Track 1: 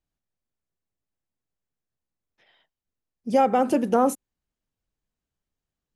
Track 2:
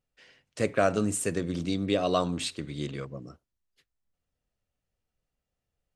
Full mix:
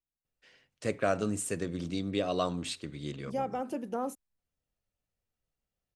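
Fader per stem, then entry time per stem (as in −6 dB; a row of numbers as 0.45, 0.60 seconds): −14.0, −4.5 decibels; 0.00, 0.25 seconds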